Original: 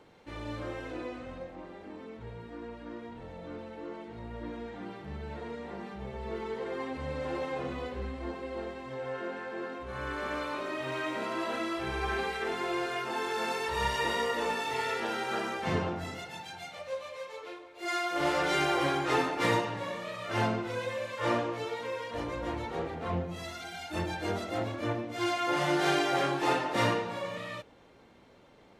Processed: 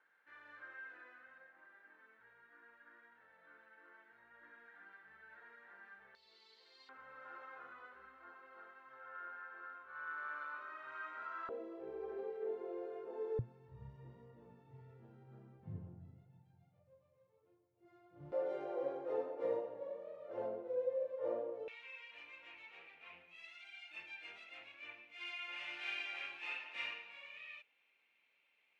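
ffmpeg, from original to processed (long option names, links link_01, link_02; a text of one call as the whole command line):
ffmpeg -i in.wav -af "asetnsamples=nb_out_samples=441:pad=0,asendcmd='6.15 bandpass f 4400;6.89 bandpass f 1400;11.49 bandpass f 460;13.39 bandpass f 120;18.32 bandpass f 510;21.68 bandpass f 2500',bandpass=frequency=1600:width_type=q:width=8.2:csg=0" out.wav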